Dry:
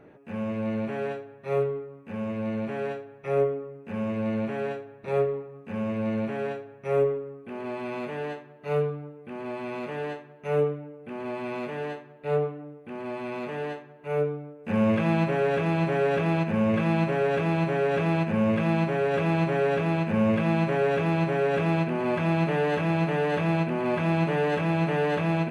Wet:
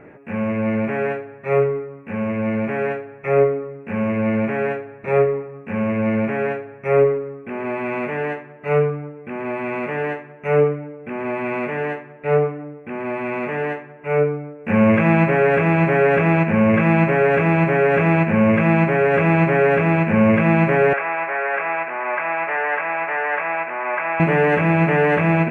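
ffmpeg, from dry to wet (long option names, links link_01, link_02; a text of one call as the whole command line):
ffmpeg -i in.wav -filter_complex "[0:a]asettb=1/sr,asplit=3[link_01][link_02][link_03];[link_01]atrim=end=20.934[link_04];[link_02]atrim=start=20.93:end=24.2,asetpts=PTS-STARTPTS,afade=type=in:duration=0.004:curve=qsin,afade=type=out:start_time=3.266:duration=0.004:curve=qsin,asuperpass=centerf=1300:order=4:qfactor=0.77[link_05];[link_03]atrim=start=24.196[link_06];[link_04][link_05]acrossfade=duration=0.004:curve1=hsin:curve2=qsin[link_07];[link_07][link_06]acrossfade=duration=0.004:curve1=qsin:curve2=hsin,highshelf=frequency=2900:width_type=q:width=3:gain=-9,volume=8dB" out.wav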